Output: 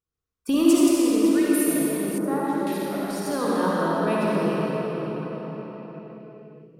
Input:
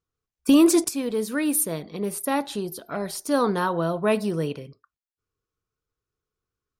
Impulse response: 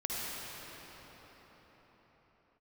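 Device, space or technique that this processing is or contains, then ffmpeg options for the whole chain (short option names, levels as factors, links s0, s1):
cathedral: -filter_complex "[1:a]atrim=start_sample=2205[s0];[0:a][s0]afir=irnorm=-1:irlink=0,asettb=1/sr,asplit=3[s1][s2][s3];[s1]atrim=end=2.184[s4];[s2]atrim=start=2.18:end=2.67,asetpts=PTS-STARTPTS,afade=t=in:d=0.004:c=qsin,afade=t=out:st=0.486:d=0.004:c=qsin,highshelf=f=1900:t=q:w=1.5:g=-10.5[s5];[s3]atrim=start=2.666[s6];[s4][s5]acrossfade=d=0.004:c1=hsin:c2=qsin[s7];[s7][s6]acrossfade=d=0.004:c1=qsin:c2=hsin,volume=0.562"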